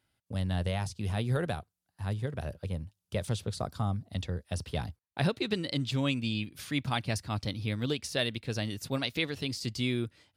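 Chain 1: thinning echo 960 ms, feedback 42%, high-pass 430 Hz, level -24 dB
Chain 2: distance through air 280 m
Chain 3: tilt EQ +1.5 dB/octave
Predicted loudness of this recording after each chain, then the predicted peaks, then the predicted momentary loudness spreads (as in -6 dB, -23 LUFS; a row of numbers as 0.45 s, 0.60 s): -33.5 LUFS, -34.5 LUFS, -34.0 LUFS; -14.0 dBFS, -17.0 dBFS, -12.5 dBFS; 7 LU, 7 LU, 9 LU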